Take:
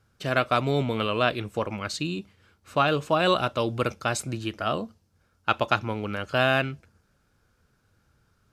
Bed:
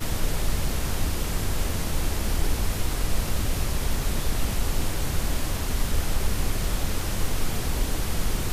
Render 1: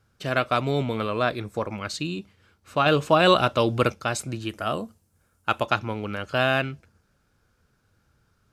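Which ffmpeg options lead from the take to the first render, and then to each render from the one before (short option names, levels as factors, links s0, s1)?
-filter_complex "[0:a]asettb=1/sr,asplit=3[s0][s1][s2];[s0]atrim=end=0.964[s3];[s1]atrim=start=0.96:end=1.76,asetpts=PTS-STARTPTS,afade=t=in:d=0.004:c=qsin,afade=t=out:st=0.796:d=0.004:c=qsin,equalizer=f=2900:w=6.7:g=-14[s4];[s2]atrim=start=1.756[s5];[s3][s4]acrossfade=d=0.004:c1=hsin:c2=qsin[s6];[s6][s5]acrossfade=d=0.004:c1=qsin:c2=hsin,asettb=1/sr,asplit=3[s7][s8][s9];[s7]atrim=end=4.494[s10];[s8]atrim=start=4.49:end=5.63,asetpts=PTS-STARTPTS,afade=t=in:d=0.004:c=qsin,afade=t=out:st=1.136:d=0.004:c=qsin,highshelf=f=6600:t=q:w=1.5:g=8[s11];[s9]atrim=start=5.626[s12];[s10][s11]acrossfade=d=0.004:c1=hsin:c2=qsin[s13];[s13][s12]acrossfade=d=0.004:c1=qsin:c2=hsin,asplit=3[s14][s15][s16];[s14]atrim=end=2.862[s17];[s15]atrim=start=2.858:end=3.902,asetpts=PTS-STARTPTS,volume=1.68[s18];[s16]atrim=start=3.898[s19];[s17][s18]acrossfade=d=0.004:c1=hsin:c2=hsin[s20];[s20][s19]acrossfade=d=0.004:c1=hsin:c2=hsin"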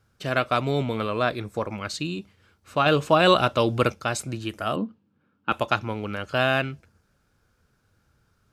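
-filter_complex "[0:a]asettb=1/sr,asplit=3[s0][s1][s2];[s0]atrim=end=4.764[s3];[s1]atrim=start=4.76:end=5.52,asetpts=PTS-STARTPTS,afade=t=in:d=0.004:c=qsin,afade=t=out:st=0.756:d=0.004:c=qsin,highpass=f=120:w=0.5412,highpass=f=120:w=1.3066,equalizer=f=200:t=q:w=4:g=7,equalizer=f=280:t=q:w=4:g=10,equalizer=f=680:t=q:w=4:g=-8,equalizer=f=2000:t=q:w=4:g=-6,lowpass=f=3300:w=0.5412,lowpass=f=3300:w=1.3066[s4];[s2]atrim=start=5.516[s5];[s3][s4]acrossfade=d=0.004:c1=hsin:c2=qsin[s6];[s6][s5]acrossfade=d=0.004:c1=qsin:c2=hsin"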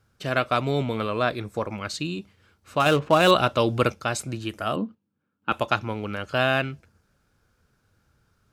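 -filter_complex "[0:a]asettb=1/sr,asplit=3[s0][s1][s2];[s0]atrim=end=2.804[s3];[s1]atrim=start=2.8:end=3.31,asetpts=PTS-STARTPTS,afade=t=in:d=0.004:c=qsin,afade=t=out:st=0.506:d=0.004:c=qsin,adynamicsmooth=sensitivity=7.5:basefreq=1100[s4];[s2]atrim=start=3.306[s5];[s3][s4]acrossfade=d=0.004:c1=hsin:c2=qsin[s6];[s6][s5]acrossfade=d=0.004:c1=qsin:c2=hsin,asplit=3[s7][s8][s9];[s7]atrim=end=4.95,asetpts=PTS-STARTPTS,afade=t=out:st=4.8:d=0.15:c=log:silence=0.316228[s10];[s8]atrim=start=4.95:end=5.42,asetpts=PTS-STARTPTS,volume=0.316[s11];[s9]atrim=start=5.42,asetpts=PTS-STARTPTS,afade=t=in:d=0.15:c=log:silence=0.316228[s12];[s10][s11][s12]concat=n=3:v=0:a=1"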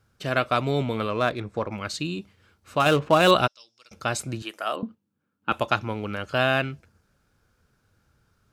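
-filter_complex "[0:a]asettb=1/sr,asplit=3[s0][s1][s2];[s0]atrim=end=1.104[s3];[s1]atrim=start=1.1:end=1.72,asetpts=PTS-STARTPTS,afade=t=in:d=0.004:c=qsin,afade=t=out:st=0.616:d=0.004:c=qsin,adynamicsmooth=sensitivity=5.5:basefreq=4200[s4];[s2]atrim=start=1.716[s5];[s3][s4]acrossfade=d=0.004:c1=hsin:c2=qsin[s6];[s6][s5]acrossfade=d=0.004:c1=qsin:c2=hsin,asplit=3[s7][s8][s9];[s7]afade=t=out:st=3.46:d=0.02[s10];[s8]bandpass=f=5400:t=q:w=11,afade=t=in:st=3.46:d=0.02,afade=t=out:st=3.91:d=0.02[s11];[s9]afade=t=in:st=3.91:d=0.02[s12];[s10][s11][s12]amix=inputs=3:normalize=0,asettb=1/sr,asplit=3[s13][s14][s15];[s13]atrim=end=4.424[s16];[s14]atrim=start=4.42:end=4.83,asetpts=PTS-STARTPTS,afade=t=in:d=0.004:c=qsin,afade=t=out:st=0.406:d=0.004:c=qsin,highpass=490[s17];[s15]atrim=start=4.826[s18];[s16][s17]acrossfade=d=0.004:c1=hsin:c2=qsin[s19];[s19][s18]acrossfade=d=0.004:c1=qsin:c2=hsin"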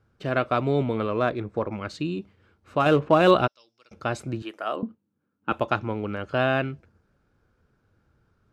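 -af "lowpass=f=1700:p=1,equalizer=f=350:w=1.5:g=3.5"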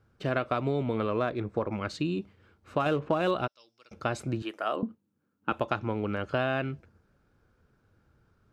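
-af "acompressor=threshold=0.0631:ratio=6"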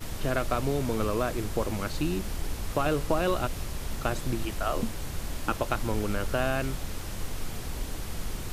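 -filter_complex "[1:a]volume=0.376[s0];[0:a][s0]amix=inputs=2:normalize=0"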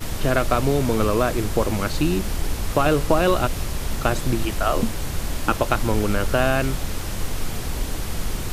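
-af "volume=2.51"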